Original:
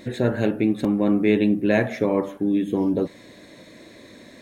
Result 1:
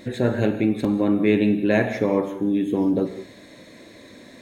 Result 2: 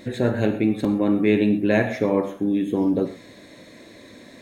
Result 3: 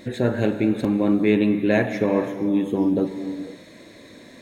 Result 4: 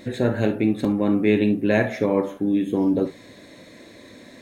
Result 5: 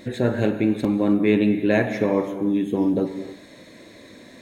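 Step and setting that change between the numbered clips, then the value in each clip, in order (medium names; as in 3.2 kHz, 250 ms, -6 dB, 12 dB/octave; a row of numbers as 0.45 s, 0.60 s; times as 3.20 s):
gated-style reverb, gate: 220 ms, 150 ms, 530 ms, 90 ms, 340 ms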